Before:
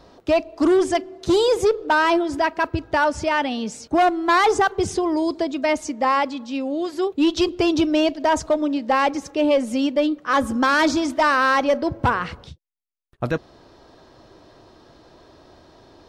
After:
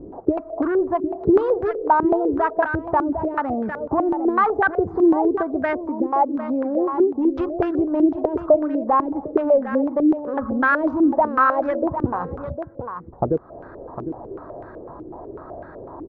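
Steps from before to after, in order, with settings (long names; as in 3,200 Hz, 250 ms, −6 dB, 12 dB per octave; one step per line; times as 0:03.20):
adaptive Wiener filter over 15 samples
downward compressor 5 to 1, threshold −32 dBFS, peak gain reduction 15.5 dB
single-tap delay 754 ms −10 dB
low-pass on a step sequencer 8 Hz 340–1,600 Hz
level +8.5 dB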